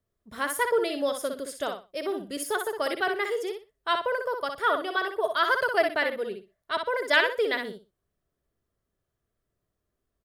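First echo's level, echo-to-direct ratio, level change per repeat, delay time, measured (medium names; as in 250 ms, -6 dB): -6.0 dB, -6.0 dB, -13.5 dB, 61 ms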